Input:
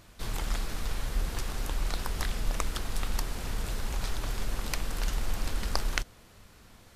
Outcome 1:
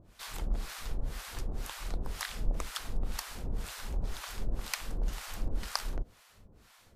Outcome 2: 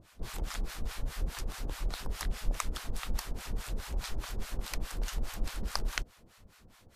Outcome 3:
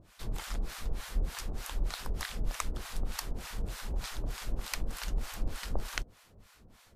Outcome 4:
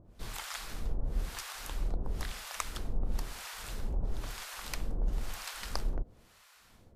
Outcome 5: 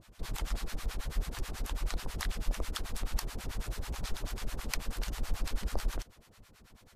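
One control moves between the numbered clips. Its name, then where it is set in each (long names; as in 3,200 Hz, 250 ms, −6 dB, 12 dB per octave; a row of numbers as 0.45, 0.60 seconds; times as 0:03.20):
two-band tremolo in antiphase, speed: 2, 4.8, 3.3, 1, 9.2 Hertz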